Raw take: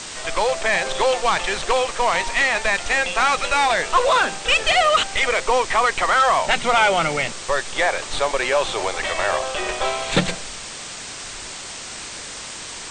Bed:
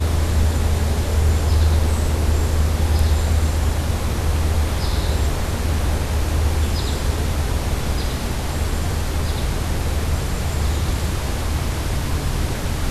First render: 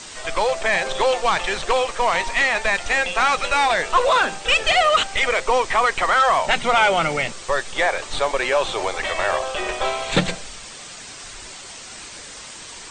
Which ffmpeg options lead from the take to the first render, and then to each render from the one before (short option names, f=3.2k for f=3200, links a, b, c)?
-af "afftdn=nr=6:nf=-34"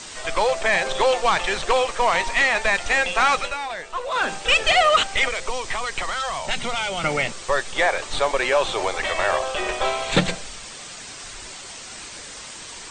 -filter_complex "[0:a]asettb=1/sr,asplit=3[a][b][c];[a]atrim=end=5.284[d];[b]atrim=start=5.28:end=7.04,asetpts=PTS-STARTPTS,afade=t=in:d=0.004:c=qsin,afade=t=out:st=1.756:d=0.004:c=qsin,acrossover=split=170|3000[e][f][g];[f]acompressor=threshold=-26dB:ratio=6:attack=3.2:release=140:knee=2.83:detection=peak[h];[e][h][g]amix=inputs=3:normalize=0[i];[c]atrim=start=7.036[j];[d][i]acrossfade=d=0.004:c1=hsin:c2=qsin[k];[k][j]acrossfade=d=0.004:c1=qsin:c2=hsin,asplit=3[l][m][n];[l]atrim=end=3.57,asetpts=PTS-STARTPTS,afade=t=out:st=3.36:d=0.21:silence=0.266073[o];[m]atrim=start=3.57:end=4.1,asetpts=PTS-STARTPTS,volume=-11.5dB[p];[n]atrim=start=4.1,asetpts=PTS-STARTPTS,afade=t=in:d=0.21:silence=0.266073[q];[o][p][q]concat=n=3:v=0:a=1"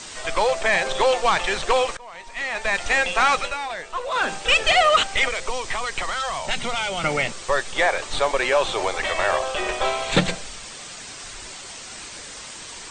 -filter_complex "[0:a]asplit=2[a][b];[a]atrim=end=1.97,asetpts=PTS-STARTPTS,afade=t=out:st=1.966:d=0.004:c=hsin:silence=0.0707946[c];[b]atrim=start=1.97,asetpts=PTS-STARTPTS,afade=t=in:d=0.86:c=qua:silence=0.0707946[d];[c][d]concat=n=2:v=0:a=1"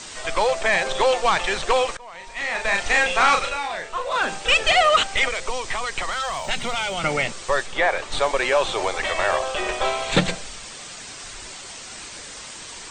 -filter_complex "[0:a]asettb=1/sr,asplit=3[a][b][c];[a]atrim=end=2.174[d];[b]atrim=start=2.17:end=4.17,asetpts=PTS-STARTPTS,afade=t=in:d=0.004:c=qsin,afade=t=out:st=1.996:d=0.004:c=qsin,asplit=2[e][f];[f]adelay=36,volume=-4dB[g];[e][g]amix=inputs=2:normalize=0,atrim=end_sample=88200[h];[c]atrim=start=4.166[i];[d][h]acrossfade=d=0.004:c1=hsin:c2=qsin[j];[j][i]acrossfade=d=0.004:c1=qsin:c2=hsin,asettb=1/sr,asplit=3[k][l][m];[k]atrim=end=6.124[n];[l]atrim=start=6.12:end=6.94,asetpts=PTS-STARTPTS,afade=t=in:d=0.004:c=qsin,afade=t=out:st=0.816:d=0.004:c=qsin,aeval=exprs='val(0)*gte(abs(val(0)),0.00422)':c=same[o];[m]atrim=start=6.936[p];[n][o]acrossfade=d=0.004:c1=hsin:c2=qsin[q];[q][p]acrossfade=d=0.004:c1=qsin:c2=hsin,asettb=1/sr,asplit=3[r][s][t];[r]atrim=end=7.664[u];[s]atrim=start=7.66:end=8.12,asetpts=PTS-STARTPTS,afade=t=in:d=0.004:c=qsin,afade=t=out:st=0.456:d=0.004:c=qsin,acrossover=split=3700[v][w];[w]acompressor=threshold=-42dB:ratio=4:attack=1:release=60[x];[v][x]amix=inputs=2:normalize=0[y];[t]atrim=start=8.116[z];[u][y]acrossfade=d=0.004:c1=hsin:c2=qsin[aa];[aa][z]acrossfade=d=0.004:c1=qsin:c2=hsin"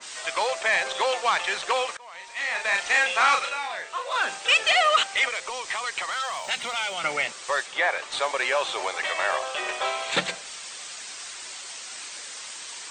-af "highpass=f=1.1k:p=1,adynamicequalizer=threshold=0.0178:dfrequency=2600:dqfactor=0.7:tfrequency=2600:tqfactor=0.7:attack=5:release=100:ratio=0.375:range=1.5:mode=cutabove:tftype=highshelf"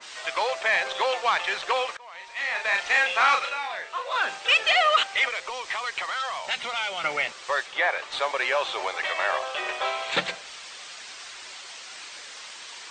-af "lowpass=5.1k,equalizer=f=210:t=o:w=1.4:g=-3.5"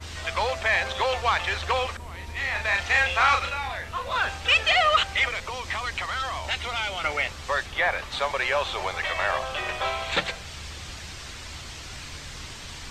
-filter_complex "[1:a]volume=-21dB[a];[0:a][a]amix=inputs=2:normalize=0"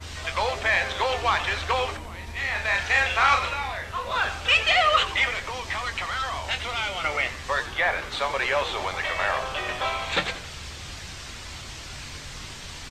-filter_complex "[0:a]asplit=2[a][b];[b]adelay=22,volume=-11dB[c];[a][c]amix=inputs=2:normalize=0,asplit=6[d][e][f][g][h][i];[e]adelay=88,afreqshift=-100,volume=-14dB[j];[f]adelay=176,afreqshift=-200,volume=-19.7dB[k];[g]adelay=264,afreqshift=-300,volume=-25.4dB[l];[h]adelay=352,afreqshift=-400,volume=-31dB[m];[i]adelay=440,afreqshift=-500,volume=-36.7dB[n];[d][j][k][l][m][n]amix=inputs=6:normalize=0"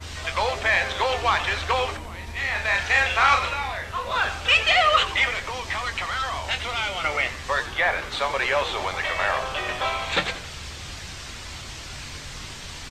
-af "volume=1.5dB"